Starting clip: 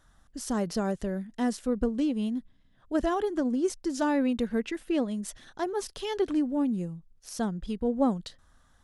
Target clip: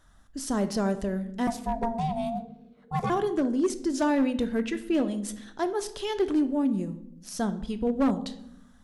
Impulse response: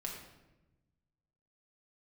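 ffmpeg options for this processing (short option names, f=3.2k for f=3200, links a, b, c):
-filter_complex "[0:a]asettb=1/sr,asplit=3[a][b][c];[a]atrim=end=1.474[d];[b]atrim=start=1.47:end=3.1,asetpts=PTS-STARTPTS,afade=t=in:d=0.004:c=qsin,afade=t=out:st=1.626:d=0.004:c=qsin,aeval=exprs='val(0)*sin(2*PI*460*n/s)':c=same[e];[c]atrim=start=3.096[f];[d][e]acrossfade=d=0.004:c1=hsin:c2=qsin[g];[g][f]acrossfade=d=0.004:c1=qsin:c2=hsin,asplit=2[h][i];[1:a]atrim=start_sample=2205,asetrate=66150,aresample=44100[j];[i][j]afir=irnorm=-1:irlink=0,volume=-1dB[k];[h][k]amix=inputs=2:normalize=0,volume=17.5dB,asoftclip=hard,volume=-17.5dB,volume=-1dB"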